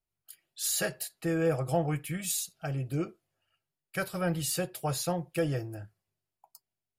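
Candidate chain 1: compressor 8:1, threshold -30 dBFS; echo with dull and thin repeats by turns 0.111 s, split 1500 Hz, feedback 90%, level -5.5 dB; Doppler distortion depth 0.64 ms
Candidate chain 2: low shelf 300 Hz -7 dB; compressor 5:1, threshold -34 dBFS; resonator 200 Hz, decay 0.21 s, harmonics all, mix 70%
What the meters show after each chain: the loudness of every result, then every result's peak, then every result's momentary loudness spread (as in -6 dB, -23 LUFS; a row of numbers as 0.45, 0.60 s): -34.5, -46.0 LUFS; -19.5, -31.0 dBFS; 10, 16 LU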